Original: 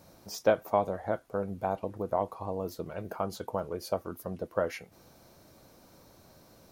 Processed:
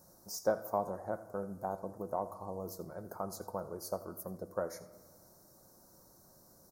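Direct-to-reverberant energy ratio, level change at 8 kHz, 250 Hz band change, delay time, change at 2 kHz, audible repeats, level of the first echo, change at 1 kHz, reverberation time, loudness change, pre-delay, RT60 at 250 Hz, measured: 10.0 dB, +0.5 dB, -6.0 dB, 83 ms, -9.5 dB, 1, -18.0 dB, -6.0 dB, 1.5 s, -6.5 dB, 5 ms, 2.3 s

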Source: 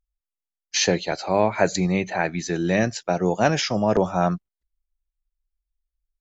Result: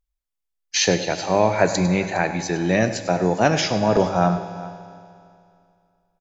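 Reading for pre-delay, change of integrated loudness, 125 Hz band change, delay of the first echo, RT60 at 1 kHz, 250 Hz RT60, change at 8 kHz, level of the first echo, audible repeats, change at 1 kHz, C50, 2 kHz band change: 4 ms, +2.0 dB, +2.5 dB, 101 ms, 2.4 s, 2.4 s, no reading, -13.5 dB, 2, +2.5 dB, 8.5 dB, +2.0 dB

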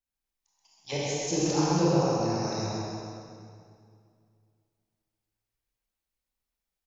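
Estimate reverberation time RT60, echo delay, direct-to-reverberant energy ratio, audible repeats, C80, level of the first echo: 2.3 s, 130 ms, -8.0 dB, 1, -3.5 dB, -3.5 dB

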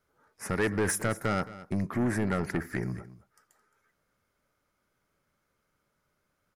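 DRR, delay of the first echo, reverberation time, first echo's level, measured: no reverb, 218 ms, no reverb, -16.5 dB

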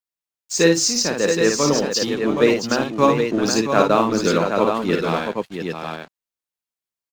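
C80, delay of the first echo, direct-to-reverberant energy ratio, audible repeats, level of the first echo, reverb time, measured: no reverb, 54 ms, no reverb, 3, -5.0 dB, no reverb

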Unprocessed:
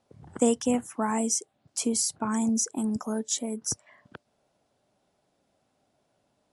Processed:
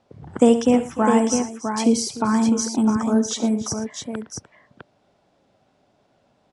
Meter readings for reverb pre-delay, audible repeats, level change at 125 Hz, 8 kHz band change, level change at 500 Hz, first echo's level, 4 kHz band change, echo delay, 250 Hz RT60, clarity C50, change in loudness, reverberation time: no reverb, 4, +9.5 dB, +0.5 dB, +10.0 dB, -14.0 dB, +5.5 dB, 69 ms, no reverb, no reverb, +7.5 dB, no reverb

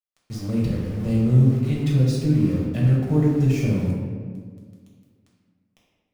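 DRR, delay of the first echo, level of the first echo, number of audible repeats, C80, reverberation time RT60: -4.5 dB, no echo, no echo, no echo, 3.0 dB, 1.8 s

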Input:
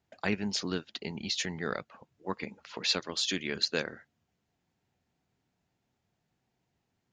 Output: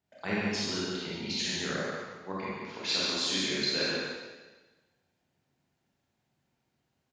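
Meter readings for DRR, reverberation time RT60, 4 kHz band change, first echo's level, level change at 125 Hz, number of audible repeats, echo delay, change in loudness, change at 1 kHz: -8.0 dB, 1.3 s, +2.5 dB, -3.5 dB, +0.5 dB, 1, 142 ms, +1.5 dB, +2.0 dB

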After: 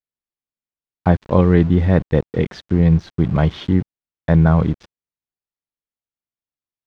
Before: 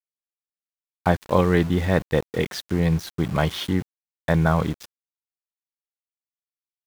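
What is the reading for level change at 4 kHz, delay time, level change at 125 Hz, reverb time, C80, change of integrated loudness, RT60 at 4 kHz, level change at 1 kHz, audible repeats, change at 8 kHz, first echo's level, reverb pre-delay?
-4.5 dB, no echo, +8.0 dB, no reverb, no reverb, +6.0 dB, no reverb, +0.5 dB, no echo, under -10 dB, no echo, no reverb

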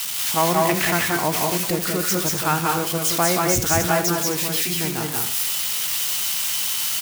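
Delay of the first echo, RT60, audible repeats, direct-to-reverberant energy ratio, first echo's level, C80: 81 ms, no reverb, 3, no reverb, -14.5 dB, no reverb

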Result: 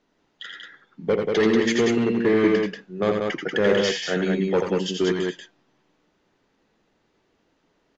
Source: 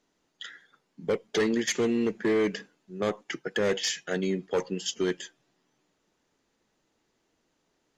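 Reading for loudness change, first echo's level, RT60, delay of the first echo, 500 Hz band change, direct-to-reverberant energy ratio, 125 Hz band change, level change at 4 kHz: +6.5 dB, -5.5 dB, no reverb, 83 ms, +7.5 dB, no reverb, +8.5 dB, +4.5 dB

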